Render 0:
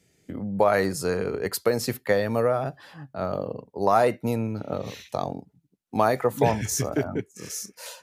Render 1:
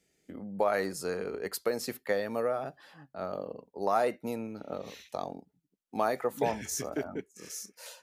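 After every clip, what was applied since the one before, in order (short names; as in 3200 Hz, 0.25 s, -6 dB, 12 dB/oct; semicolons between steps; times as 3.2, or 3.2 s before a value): bell 110 Hz -13 dB 0.93 oct; notch 990 Hz, Q 26; gain -7 dB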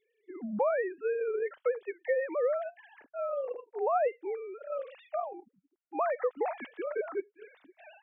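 sine-wave speech; compressor 2:1, threshold -35 dBFS, peak gain reduction 7.5 dB; gain +5 dB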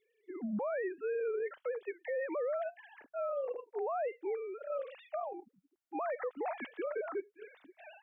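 limiter -29.5 dBFS, peak gain reduction 11 dB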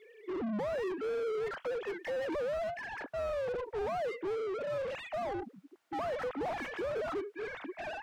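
overdrive pedal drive 33 dB, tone 1100 Hz, clips at -29 dBFS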